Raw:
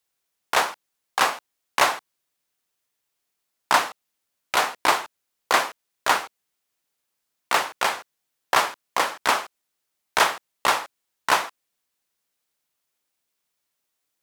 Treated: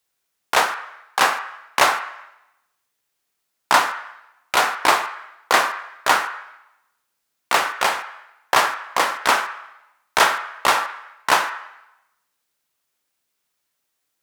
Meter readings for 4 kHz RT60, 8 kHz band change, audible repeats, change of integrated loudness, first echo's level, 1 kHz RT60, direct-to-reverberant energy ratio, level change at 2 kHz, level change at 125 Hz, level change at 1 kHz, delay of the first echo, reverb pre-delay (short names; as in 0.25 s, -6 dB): 0.85 s, +3.0 dB, none, +3.5 dB, none, 0.90 s, 6.0 dB, +4.5 dB, n/a, +4.0 dB, none, 7 ms